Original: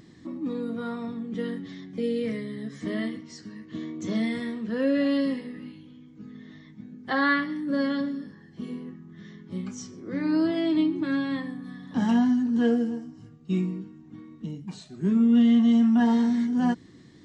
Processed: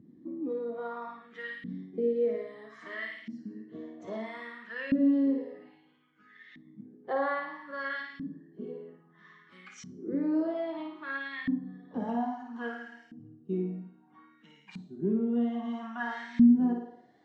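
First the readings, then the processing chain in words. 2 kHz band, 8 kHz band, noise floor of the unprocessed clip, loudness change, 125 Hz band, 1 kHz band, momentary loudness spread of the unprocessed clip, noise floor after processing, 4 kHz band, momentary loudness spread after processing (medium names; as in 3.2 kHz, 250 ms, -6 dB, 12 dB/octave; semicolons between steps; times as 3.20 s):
-4.5 dB, no reading, -51 dBFS, -6.0 dB, -8.5 dB, -3.5 dB, 21 LU, -62 dBFS, -11.5 dB, 21 LU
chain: flutter echo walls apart 9.4 m, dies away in 0.62 s; in parallel at 0 dB: compression, threshold -30 dBFS, peak gain reduction 16 dB; on the sum: LFO band-pass saw up 0.61 Hz 220–2400 Hz; spectral noise reduction 7 dB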